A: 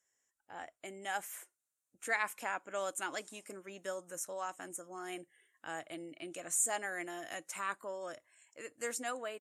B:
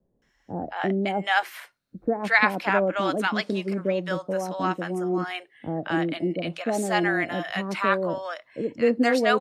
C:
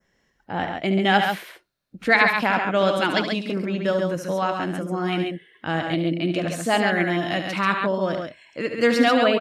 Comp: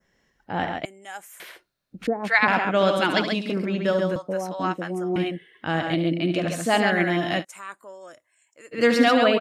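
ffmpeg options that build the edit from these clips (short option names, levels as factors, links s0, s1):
-filter_complex "[0:a]asplit=2[s0][s1];[1:a]asplit=2[s2][s3];[2:a]asplit=5[s4][s5][s6][s7][s8];[s4]atrim=end=0.852[s9];[s0]atrim=start=0.848:end=1.402[s10];[s5]atrim=start=1.398:end=2.072[s11];[s2]atrim=start=2.068:end=2.482[s12];[s6]atrim=start=2.478:end=4.162[s13];[s3]atrim=start=4.158:end=5.162[s14];[s7]atrim=start=5.158:end=7.45[s15];[s1]atrim=start=7.39:end=8.77[s16];[s8]atrim=start=8.71[s17];[s9][s10]acrossfade=d=0.004:c1=hsin:c2=hsin[s18];[s18][s11]acrossfade=d=0.004:c1=hsin:c2=hsin[s19];[s19][s12]acrossfade=d=0.004:c1=hsin:c2=hsin[s20];[s20][s13]acrossfade=d=0.004:c1=hsin:c2=hsin[s21];[s21][s14]acrossfade=d=0.004:c1=hsin:c2=hsin[s22];[s22][s15]acrossfade=d=0.004:c1=hsin:c2=hsin[s23];[s23][s16]acrossfade=d=0.06:c1=tri:c2=tri[s24];[s24][s17]acrossfade=d=0.06:c1=tri:c2=tri"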